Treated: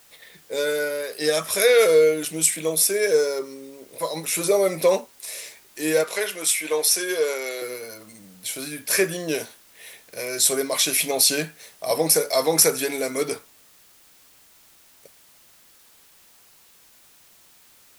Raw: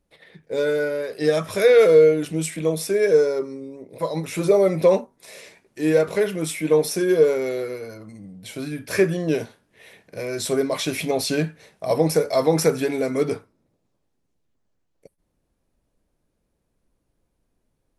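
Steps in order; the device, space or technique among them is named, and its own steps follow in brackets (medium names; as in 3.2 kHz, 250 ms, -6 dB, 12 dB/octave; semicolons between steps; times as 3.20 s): turntable without a phono preamp (RIAA curve recording; white noise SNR 30 dB); 6.04–7.62 s: frequency weighting A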